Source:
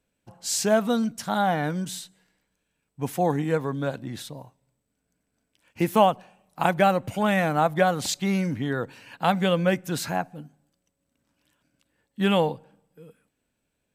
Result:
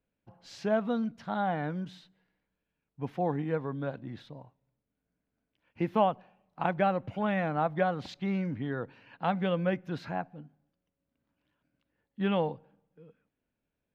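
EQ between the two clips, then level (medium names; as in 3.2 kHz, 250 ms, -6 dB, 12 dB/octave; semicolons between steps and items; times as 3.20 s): distance through air 300 m; -6.0 dB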